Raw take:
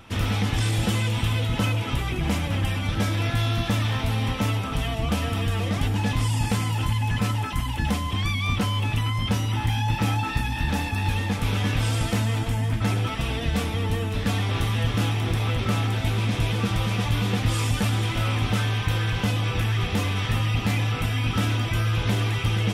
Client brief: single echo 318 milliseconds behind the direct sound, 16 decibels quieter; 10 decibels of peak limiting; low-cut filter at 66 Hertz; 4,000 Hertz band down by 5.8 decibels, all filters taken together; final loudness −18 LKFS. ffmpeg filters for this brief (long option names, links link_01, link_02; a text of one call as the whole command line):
ffmpeg -i in.wav -af "highpass=66,equalizer=frequency=4000:width_type=o:gain=-8,alimiter=limit=-21.5dB:level=0:latency=1,aecho=1:1:318:0.158,volume=11.5dB" out.wav